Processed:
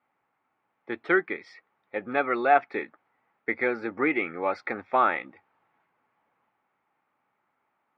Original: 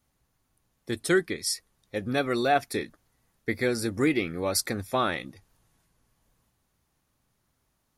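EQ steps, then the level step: speaker cabinet 310–2500 Hz, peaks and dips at 840 Hz +9 dB, 1300 Hz +7 dB, 2200 Hz +6 dB; 0.0 dB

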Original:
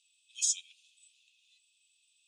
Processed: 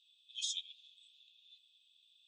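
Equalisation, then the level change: band-pass 3500 Hz, Q 9.5; +10.0 dB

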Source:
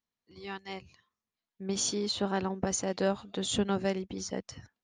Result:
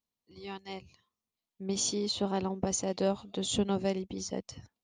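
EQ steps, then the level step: bell 1600 Hz -10.5 dB 0.61 oct; 0.0 dB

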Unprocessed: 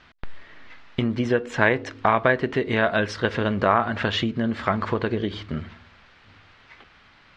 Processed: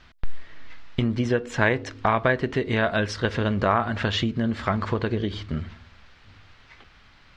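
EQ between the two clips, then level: tone controls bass +1 dB, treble +6 dB; low shelf 83 Hz +11.5 dB; -2.5 dB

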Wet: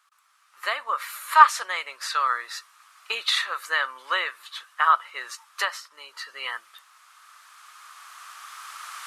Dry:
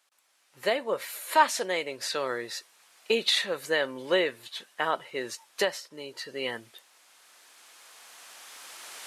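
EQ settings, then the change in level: resonant high-pass 1200 Hz, resonance Q 6.7; 0.0 dB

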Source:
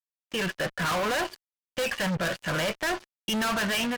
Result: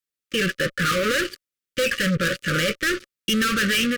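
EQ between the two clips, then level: Chebyshev band-stop 560–1200 Hz, order 4; +7.0 dB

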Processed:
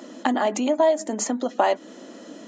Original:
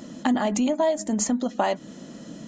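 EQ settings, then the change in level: HPF 290 Hz 24 dB/oct; high shelf 3800 Hz -6.5 dB; +4.0 dB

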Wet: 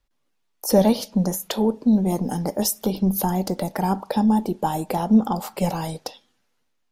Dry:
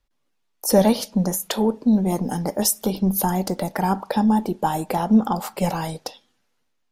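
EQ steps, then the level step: dynamic EQ 9000 Hz, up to -5 dB, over -39 dBFS, Q 1.1; dynamic EQ 1600 Hz, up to -5 dB, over -36 dBFS, Q 0.95; 0.0 dB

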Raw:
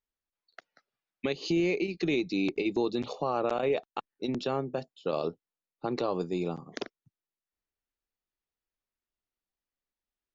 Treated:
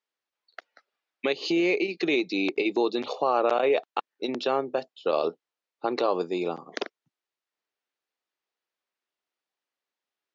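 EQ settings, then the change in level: BPF 380–5100 Hz; +7.0 dB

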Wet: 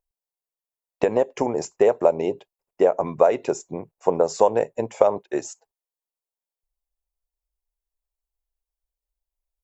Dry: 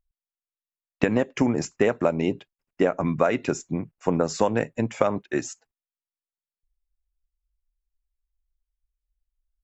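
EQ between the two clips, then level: band shelf 620 Hz +13.5 dB; high shelf 4800 Hz +11.5 dB; -8.0 dB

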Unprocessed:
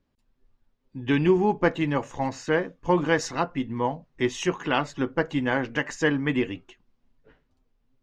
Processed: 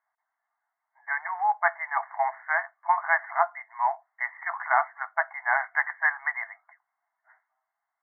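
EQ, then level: brick-wall FIR band-pass 640–2200 Hz; +4.5 dB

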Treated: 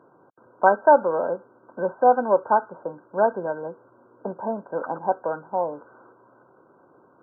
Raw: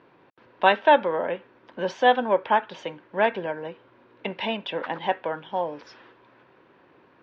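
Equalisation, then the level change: HPF 80 Hz; brick-wall FIR low-pass 1600 Hz; bell 610 Hz +3 dB 1.1 oct; 0.0 dB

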